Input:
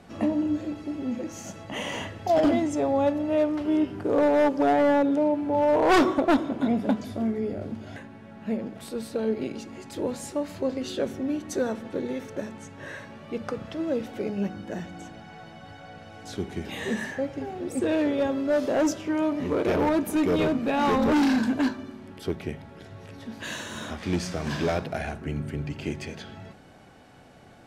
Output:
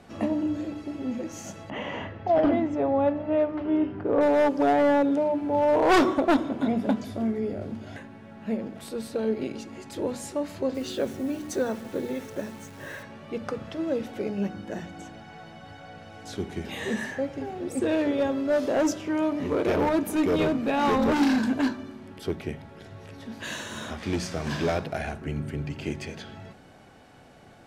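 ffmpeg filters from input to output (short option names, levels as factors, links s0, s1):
-filter_complex "[0:a]asettb=1/sr,asplit=3[s0][s1][s2];[s0]atrim=end=1.704[s3];[s1]atrim=start=1.7:end=4.21,asetpts=PTS-STARTPTS,afade=t=in:d=0.004:c=qsin,afade=t=out:st=2.506:d=0.004:c=qsin,lowpass=2300[s4];[s2]atrim=start=4.206[s5];[s3][s4]acrossfade=d=0.004:c1=hsin:c2=qsin[s6];[s6][s5]acrossfade=d=0.004:c1=qsin:c2=hsin,asettb=1/sr,asplit=3[s7][s8][s9];[s7]atrim=end=10.744[s10];[s8]atrim=start=10.74:end=13.03,asetpts=PTS-STARTPTS,afade=t=in:d=0.004:c=qsin,afade=t=out:st=2.286:d=0.004:c=qsin,acrusher=bits=9:dc=4:mix=0:aa=0.000001[s11];[s9]atrim=start=13.026[s12];[s10][s11]acrossfade=d=0.004:c1=hsin:c2=qsin[s13];[s13][s12]acrossfade=d=0.004:c1=qsin:c2=hsin,bandreject=f=60:t=h:w=6,bandreject=f=120:t=h:w=6,bandreject=f=180:t=h:w=6,bandreject=f=240:t=h:w=6,bandreject=f=300:t=h:w=6"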